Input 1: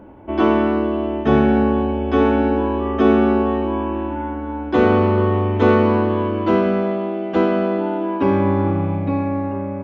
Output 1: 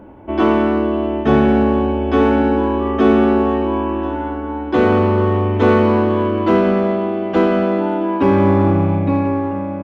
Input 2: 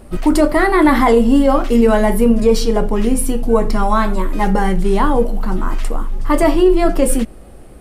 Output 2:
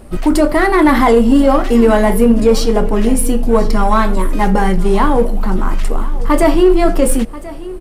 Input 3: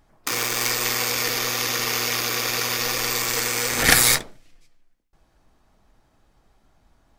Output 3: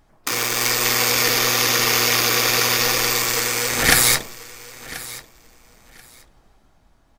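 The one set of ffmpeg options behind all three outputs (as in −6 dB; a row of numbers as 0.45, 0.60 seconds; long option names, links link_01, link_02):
-filter_complex "[0:a]dynaudnorm=framelen=150:gausssize=11:maxgain=5dB,asplit=2[link_01][link_02];[link_02]asoftclip=type=hard:threshold=-14dB,volume=-7.5dB[link_03];[link_01][link_03]amix=inputs=2:normalize=0,aecho=1:1:1035|2070:0.126|0.0239,volume=-1dB"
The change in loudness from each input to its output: +2.5, +2.0, +4.0 LU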